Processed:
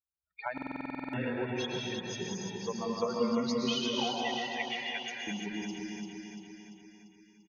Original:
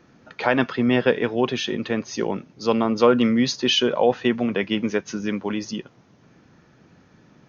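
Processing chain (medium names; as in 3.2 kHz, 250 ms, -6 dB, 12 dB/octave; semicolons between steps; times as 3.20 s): expander on every frequency bin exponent 3; 4.00–5.27 s: steep high-pass 690 Hz 48 dB/octave; compression 5:1, threshold -32 dBFS, peak gain reduction 15.5 dB; feedback delay 343 ms, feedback 56%, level -4 dB; reverberation, pre-delay 101 ms, DRR -1.5 dB; buffer glitch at 0.53 s, samples 2048, times 12; trim -2 dB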